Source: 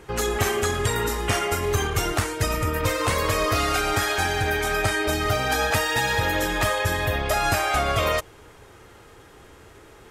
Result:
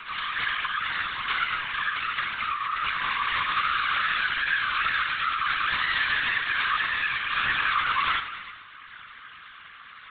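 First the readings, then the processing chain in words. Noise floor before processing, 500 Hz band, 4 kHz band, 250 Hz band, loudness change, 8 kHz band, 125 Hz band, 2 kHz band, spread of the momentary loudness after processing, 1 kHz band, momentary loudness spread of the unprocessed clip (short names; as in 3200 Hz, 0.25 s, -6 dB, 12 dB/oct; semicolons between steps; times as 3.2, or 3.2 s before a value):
-49 dBFS, -26.5 dB, -0.5 dB, -20.0 dB, -2.0 dB, under -40 dB, -22.5 dB, +1.5 dB, 20 LU, -2.0 dB, 3 LU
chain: tracing distortion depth 0.46 ms; wow and flutter 110 cents; on a send: reverse echo 0.108 s -10 dB; on the sum: upward compressor, threshold -40 dBFS; steep high-pass 1100 Hz 48 dB/oct; non-linear reverb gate 0.47 s falling, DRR 7.5 dB; LPC vocoder at 8 kHz pitch kept; whisperiser; in parallel at 0 dB: compressor, threshold -39 dBFS, peak gain reduction 16 dB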